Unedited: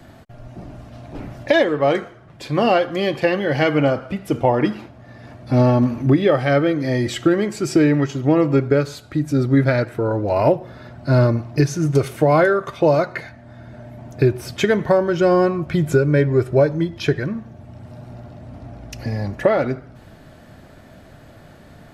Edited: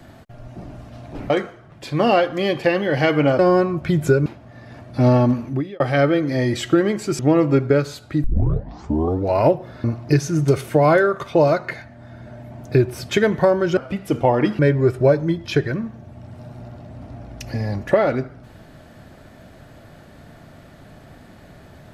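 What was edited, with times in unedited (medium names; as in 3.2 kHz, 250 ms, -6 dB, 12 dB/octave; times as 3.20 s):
1.30–1.88 s: delete
3.97–4.79 s: swap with 15.24–16.11 s
5.77–6.33 s: fade out
7.72–8.20 s: delete
9.25 s: tape start 1.06 s
10.85–11.31 s: delete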